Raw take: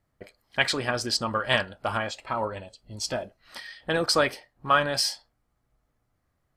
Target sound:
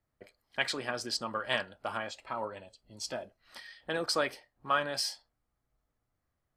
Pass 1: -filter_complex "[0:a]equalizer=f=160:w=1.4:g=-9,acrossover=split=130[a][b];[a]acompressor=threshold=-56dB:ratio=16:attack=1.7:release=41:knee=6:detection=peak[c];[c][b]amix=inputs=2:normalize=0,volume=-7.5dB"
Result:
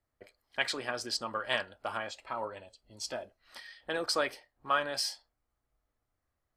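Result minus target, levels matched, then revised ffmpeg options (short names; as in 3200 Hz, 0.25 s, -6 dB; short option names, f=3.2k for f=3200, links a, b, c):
125 Hz band -4.0 dB
-filter_complex "[0:a]equalizer=f=160:w=1.4:g=-2,acrossover=split=130[a][b];[a]acompressor=threshold=-56dB:ratio=16:attack=1.7:release=41:knee=6:detection=peak[c];[c][b]amix=inputs=2:normalize=0,volume=-7.5dB"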